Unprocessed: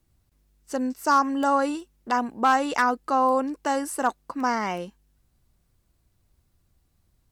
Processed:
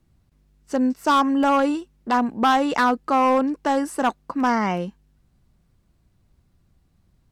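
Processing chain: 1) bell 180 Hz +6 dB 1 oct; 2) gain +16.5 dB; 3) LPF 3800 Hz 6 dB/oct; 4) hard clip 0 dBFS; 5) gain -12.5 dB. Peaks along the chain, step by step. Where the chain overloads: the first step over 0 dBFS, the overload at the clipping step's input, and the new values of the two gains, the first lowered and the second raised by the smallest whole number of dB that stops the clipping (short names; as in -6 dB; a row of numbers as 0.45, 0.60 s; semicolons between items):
-10.0, +6.5, +6.0, 0.0, -12.5 dBFS; step 2, 6.0 dB; step 2 +10.5 dB, step 5 -6.5 dB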